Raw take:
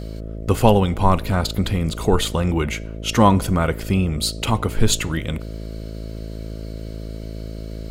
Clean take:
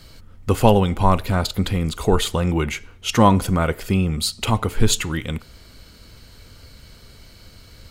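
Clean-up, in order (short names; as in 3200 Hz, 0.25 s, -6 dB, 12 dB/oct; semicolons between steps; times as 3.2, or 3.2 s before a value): de-hum 54.3 Hz, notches 12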